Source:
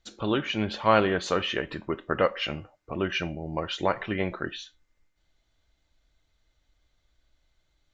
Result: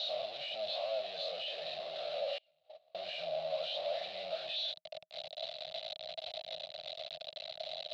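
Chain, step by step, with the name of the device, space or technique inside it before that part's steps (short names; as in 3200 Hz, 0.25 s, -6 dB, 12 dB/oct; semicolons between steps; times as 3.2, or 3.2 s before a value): spectral swells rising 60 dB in 0.38 s; home computer beeper (infinite clipping; speaker cabinet 590–5300 Hz, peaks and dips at 930 Hz -9 dB, 2700 Hz +5 dB, 4000 Hz +7 dB); EQ curve 170 Hz 0 dB, 280 Hz -22 dB, 420 Hz -16 dB, 630 Hz +14 dB, 1000 Hz -14 dB, 1600 Hz -20 dB, 3900 Hz -3 dB, 6200 Hz -20 dB, 9200 Hz -17 dB; 2.38–2.95 gate -24 dBFS, range -35 dB; gain -5.5 dB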